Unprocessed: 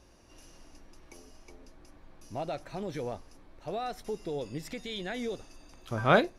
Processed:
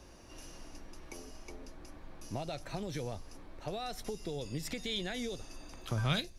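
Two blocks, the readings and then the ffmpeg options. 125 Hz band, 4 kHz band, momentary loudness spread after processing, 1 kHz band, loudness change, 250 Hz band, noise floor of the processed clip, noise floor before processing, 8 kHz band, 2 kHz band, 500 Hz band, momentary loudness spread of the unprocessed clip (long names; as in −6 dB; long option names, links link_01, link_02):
+0.5 dB, +2.5 dB, 16 LU, −10.0 dB, −5.0 dB, −4.0 dB, −54 dBFS, −58 dBFS, +4.5 dB, −8.5 dB, −9.0 dB, 14 LU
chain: -filter_complex "[0:a]acrossover=split=140|3000[link_01][link_02][link_03];[link_02]acompressor=threshold=-42dB:ratio=10[link_04];[link_01][link_04][link_03]amix=inputs=3:normalize=0,volume=4.5dB"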